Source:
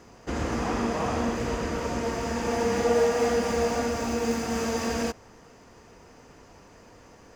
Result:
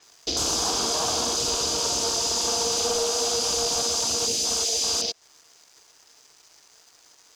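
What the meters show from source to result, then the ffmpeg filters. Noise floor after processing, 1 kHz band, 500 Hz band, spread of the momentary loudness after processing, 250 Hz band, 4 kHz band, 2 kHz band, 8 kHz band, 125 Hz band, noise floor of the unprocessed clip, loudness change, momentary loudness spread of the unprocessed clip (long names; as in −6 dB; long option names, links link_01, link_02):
−57 dBFS, −1.0 dB, −4.0 dB, 1 LU, −9.5 dB, +16.0 dB, −4.5 dB, +16.0 dB, −8.0 dB, −52 dBFS, +4.5 dB, 7 LU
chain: -filter_complex "[0:a]aexciter=amount=8.9:drive=9.9:freq=3600,aeval=exprs='sgn(val(0))*max(abs(val(0))-0.015,0)':channel_layout=same,equalizer=frequency=220:width=5.1:gain=-10,acontrast=46,asplit=2[link_01][link_02];[link_02]highpass=frequency=720:poles=1,volume=15dB,asoftclip=type=tanh:threshold=0dB[link_03];[link_01][link_03]amix=inputs=2:normalize=0,lowpass=frequency=2000:poles=1,volume=-6dB,bandreject=frequency=530:width=12,acompressor=threshold=-21dB:ratio=5,afwtdn=0.0398,adynamicequalizer=threshold=0.0178:dfrequency=7600:dqfactor=0.7:tfrequency=7600:tqfactor=0.7:attack=5:release=100:ratio=0.375:range=2.5:mode=cutabove:tftype=highshelf"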